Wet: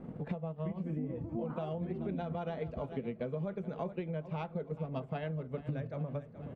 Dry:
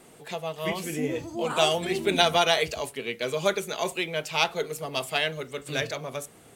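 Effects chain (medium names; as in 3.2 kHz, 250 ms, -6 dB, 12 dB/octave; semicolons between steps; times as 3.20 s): resonant low shelf 300 Hz +11 dB, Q 1.5; transient shaper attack +7 dB, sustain -5 dB; low-pass 1.1 kHz 12 dB/octave; peaking EQ 520 Hz +8 dB 0.39 oct; feedback delay 425 ms, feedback 48%, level -19 dB; peak limiter -14 dBFS, peak gain reduction 8.5 dB; compression 6:1, threshold -35 dBFS, peak gain reduction 16 dB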